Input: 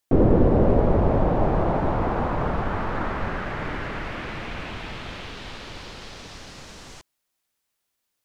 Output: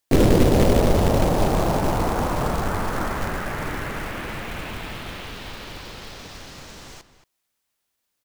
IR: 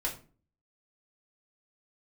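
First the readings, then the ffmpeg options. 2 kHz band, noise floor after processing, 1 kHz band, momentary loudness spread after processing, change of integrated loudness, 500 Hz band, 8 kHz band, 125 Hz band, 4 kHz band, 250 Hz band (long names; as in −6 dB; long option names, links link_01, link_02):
+2.5 dB, −77 dBFS, +1.5 dB, 21 LU, +1.5 dB, +1.5 dB, can't be measured, +1.5 dB, +6.0 dB, +1.5 dB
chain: -filter_complex "[0:a]acrusher=bits=3:mode=log:mix=0:aa=0.000001,asplit=2[link_01][link_02];[link_02]adelay=227.4,volume=-13dB,highshelf=frequency=4000:gain=-5.12[link_03];[link_01][link_03]amix=inputs=2:normalize=0,volume=1dB"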